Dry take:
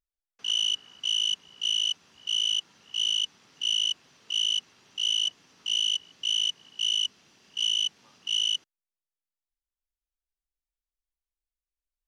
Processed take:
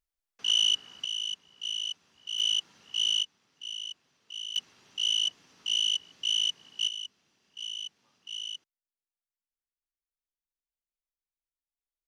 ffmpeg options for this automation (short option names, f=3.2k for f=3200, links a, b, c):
-af "asetnsamples=n=441:p=0,asendcmd='1.05 volume volume -7dB;2.39 volume volume -0.5dB;3.23 volume volume -12dB;4.56 volume volume -1dB;6.88 volume volume -11.5dB',volume=2dB"